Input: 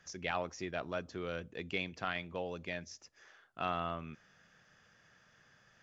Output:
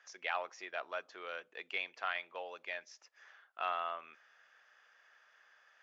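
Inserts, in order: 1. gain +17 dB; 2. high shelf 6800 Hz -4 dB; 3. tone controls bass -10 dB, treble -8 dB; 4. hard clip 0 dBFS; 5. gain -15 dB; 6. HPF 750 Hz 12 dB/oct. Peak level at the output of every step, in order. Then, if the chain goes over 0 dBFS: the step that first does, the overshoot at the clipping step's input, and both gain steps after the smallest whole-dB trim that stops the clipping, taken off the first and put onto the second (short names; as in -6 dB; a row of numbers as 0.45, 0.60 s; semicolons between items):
-3.0, -3.0, -5.0, -5.0, -20.0, -20.0 dBFS; no overload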